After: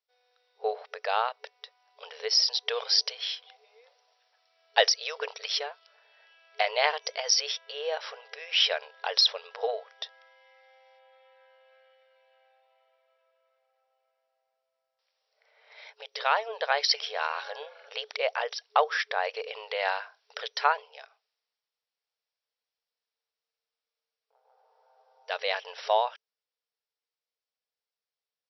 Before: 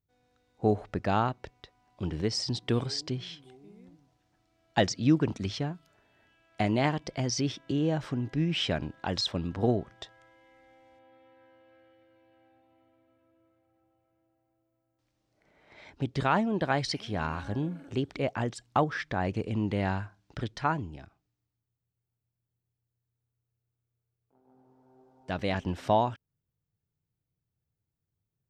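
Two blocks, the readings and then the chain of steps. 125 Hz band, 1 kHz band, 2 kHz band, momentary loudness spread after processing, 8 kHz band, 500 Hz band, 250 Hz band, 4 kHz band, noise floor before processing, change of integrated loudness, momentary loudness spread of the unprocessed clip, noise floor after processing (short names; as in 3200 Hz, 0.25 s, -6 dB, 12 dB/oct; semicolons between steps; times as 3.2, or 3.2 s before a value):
under -40 dB, +2.5 dB, +5.5 dB, 16 LU, +6.5 dB, +0.5 dB, under -40 dB, +9.5 dB, under -85 dBFS, +2.5 dB, 12 LU, under -85 dBFS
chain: vocal rider 2 s; high shelf 2600 Hz +11.5 dB; FFT band-pass 420–5800 Hz; gain +1 dB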